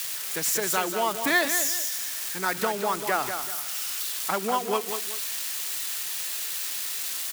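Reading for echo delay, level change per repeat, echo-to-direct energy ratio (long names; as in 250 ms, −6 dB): 191 ms, −9.5 dB, −7.5 dB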